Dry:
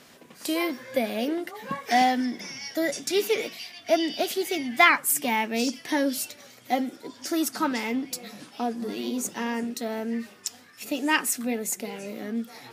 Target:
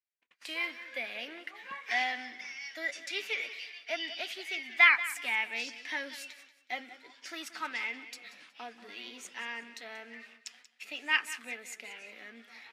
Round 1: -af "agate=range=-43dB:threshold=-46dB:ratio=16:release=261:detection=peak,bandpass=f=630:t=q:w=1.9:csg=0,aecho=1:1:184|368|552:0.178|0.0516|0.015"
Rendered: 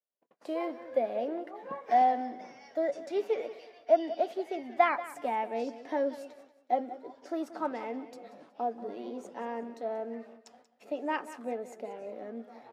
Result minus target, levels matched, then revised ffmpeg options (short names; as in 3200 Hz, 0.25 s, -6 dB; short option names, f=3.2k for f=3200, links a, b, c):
500 Hz band +16.0 dB
-af "agate=range=-43dB:threshold=-46dB:ratio=16:release=261:detection=peak,bandpass=f=2.3k:t=q:w=1.9:csg=0,aecho=1:1:184|368|552:0.178|0.0516|0.015"